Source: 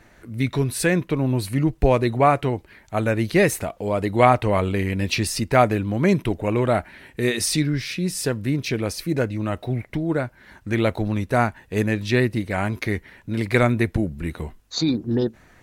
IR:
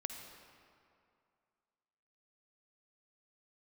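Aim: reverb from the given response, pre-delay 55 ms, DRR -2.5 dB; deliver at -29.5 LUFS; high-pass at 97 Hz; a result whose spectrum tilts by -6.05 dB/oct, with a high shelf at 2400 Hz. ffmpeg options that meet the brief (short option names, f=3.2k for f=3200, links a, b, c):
-filter_complex "[0:a]highpass=97,highshelf=f=2.4k:g=-5,asplit=2[a][b];[1:a]atrim=start_sample=2205,adelay=55[c];[b][c]afir=irnorm=-1:irlink=0,volume=3.5dB[d];[a][d]amix=inputs=2:normalize=0,volume=-11dB"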